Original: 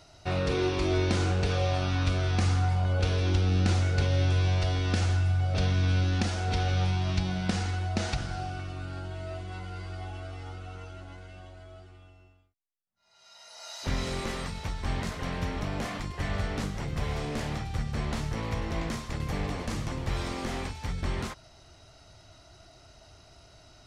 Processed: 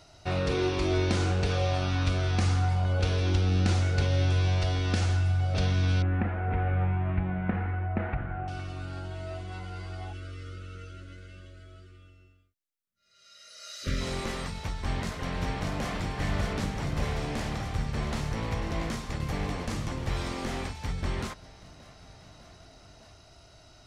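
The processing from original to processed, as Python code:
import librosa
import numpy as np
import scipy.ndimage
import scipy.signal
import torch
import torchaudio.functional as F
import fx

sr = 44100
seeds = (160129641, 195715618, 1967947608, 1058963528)

y = fx.steep_lowpass(x, sr, hz=2200.0, slope=36, at=(6.02, 8.48))
y = fx.ellip_bandstop(y, sr, low_hz=600.0, high_hz=1200.0, order=3, stop_db=40, at=(10.12, 14.0), fade=0.02)
y = fx.echo_throw(y, sr, start_s=14.74, length_s=1.19, ms=600, feedback_pct=80, wet_db=-4.5)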